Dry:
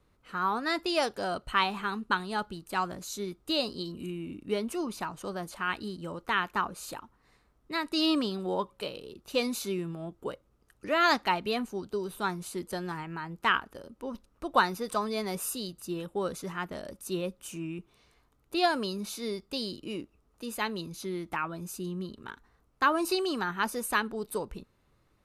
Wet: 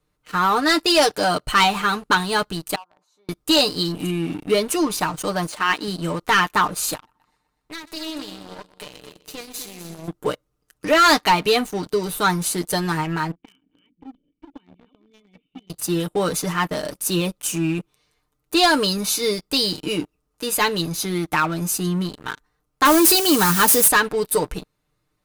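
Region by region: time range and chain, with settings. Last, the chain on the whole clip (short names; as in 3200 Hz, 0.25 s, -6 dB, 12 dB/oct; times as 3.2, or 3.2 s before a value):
2.75–3.29 band-pass 890 Hz, Q 3.7 + compressor 3:1, threshold -52 dBFS
5.47–5.88 brick-wall FIR band-pass 190–11000 Hz + high shelf 6400 Hz -6.5 dB
6.95–10.08 tube stage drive 23 dB, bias 0.7 + compressor 3:1, threshold -47 dBFS + multi-head echo 0.124 s, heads first and second, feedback 41%, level -11.5 dB
13.31–15.7 reverse delay 0.358 s, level -9 dB + compressor 2:1, threshold -42 dBFS + vocal tract filter i
22.85–23.88 switching spikes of -26 dBFS + HPF 43 Hz + low shelf 240 Hz +9.5 dB
whole clip: high shelf 3600 Hz +7 dB; comb 6.6 ms, depth 65%; sample leveller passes 3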